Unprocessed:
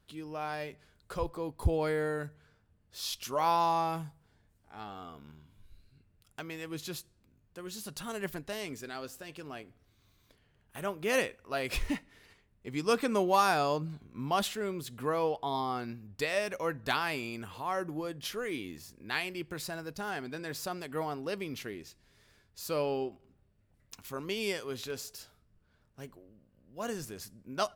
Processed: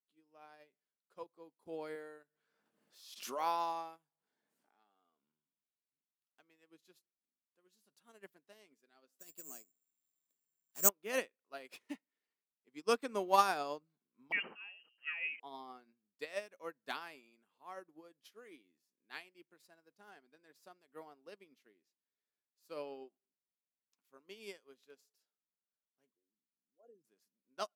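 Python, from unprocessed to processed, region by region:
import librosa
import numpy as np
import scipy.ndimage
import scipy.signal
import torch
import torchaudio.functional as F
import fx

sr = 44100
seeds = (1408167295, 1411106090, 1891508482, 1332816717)

y = fx.chain(x, sr, fx.highpass(hz=250.0, slope=6),
    fx.pre_swell(db_per_s=24.0), at=(1.95, 5.21))
y = fx.chain(y, sr, fx.low_shelf(hz=220.0, db=8.5),
    fx.resample_bad(factor=6, down='none', up='zero_stuff'), at=(9.19, 10.89))
y = fx.chain(y, sr, fx.freq_invert(carrier_hz=3000),
    fx.sustainer(db_per_s=44.0), at=(14.32, 15.4))
y = fx.chain(y, sr, fx.envelope_sharpen(power=3.0),
    fx.peak_eq(hz=1300.0, db=-8.0, octaves=1.9), at=(26.12, 27.05))
y = scipy.signal.sosfilt(scipy.signal.butter(4, 210.0, 'highpass', fs=sr, output='sos'), y)
y = fx.upward_expand(y, sr, threshold_db=-44.0, expansion=2.5)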